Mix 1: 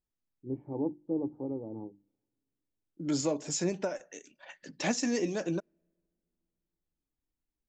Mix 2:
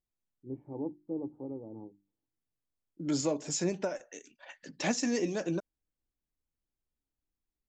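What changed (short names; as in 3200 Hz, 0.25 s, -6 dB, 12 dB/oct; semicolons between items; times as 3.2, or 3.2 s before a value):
first voice -4.0 dB; reverb: off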